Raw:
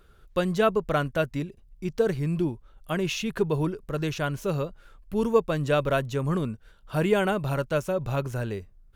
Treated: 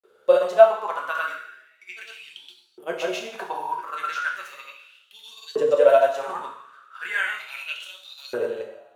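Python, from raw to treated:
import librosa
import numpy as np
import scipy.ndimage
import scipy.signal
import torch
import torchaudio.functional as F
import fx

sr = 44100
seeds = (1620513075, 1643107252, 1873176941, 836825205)

y = fx.granulator(x, sr, seeds[0], grain_ms=100.0, per_s=20.0, spray_ms=100.0, spread_st=0)
y = fx.rev_double_slope(y, sr, seeds[1], early_s=0.69, late_s=2.1, knee_db=-18, drr_db=-0.5)
y = fx.filter_lfo_highpass(y, sr, shape='saw_up', hz=0.36, low_hz=410.0, high_hz=4600.0, q=6.6)
y = y * 10.0 ** (-3.0 / 20.0)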